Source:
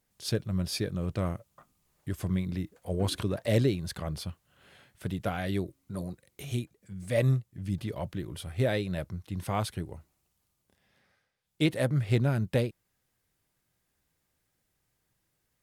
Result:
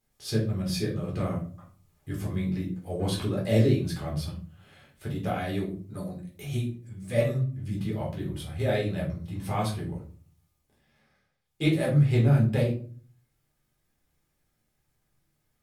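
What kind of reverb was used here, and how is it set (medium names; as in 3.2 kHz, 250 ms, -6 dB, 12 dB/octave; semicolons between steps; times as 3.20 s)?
simulated room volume 290 m³, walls furnished, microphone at 3.9 m; trim -6 dB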